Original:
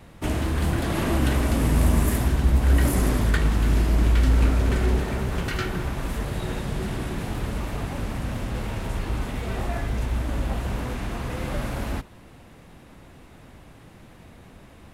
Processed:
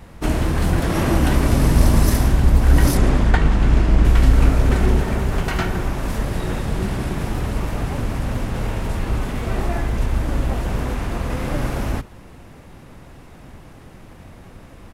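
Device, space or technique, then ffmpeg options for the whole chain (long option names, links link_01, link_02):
octave pedal: -filter_complex "[0:a]asettb=1/sr,asplit=3[link_01][link_02][link_03];[link_01]atrim=end=2.974[link_04];[link_02]atrim=start=2.97:end=4.05,asetpts=PTS-STARTPTS,afade=type=in:duration=0.004:curve=qsin,afade=type=out:start_time=1.076:duration=0.004:curve=qsin,lowpass=6000[link_05];[link_03]atrim=start=4.046[link_06];[link_04][link_05]acrossfade=duration=0.004:curve1=hsin:curve2=qsin[link_07];[link_07][link_06]acrossfade=duration=0.004:curve1=qsin:curve2=hsin,equalizer=frequency=4100:width_type=o:width=0.86:gain=-3.5,asplit=2[link_08][link_09];[link_09]asetrate=22050,aresample=44100,atempo=2,volume=-2dB[link_10];[link_08][link_10]amix=inputs=2:normalize=0,volume=4dB"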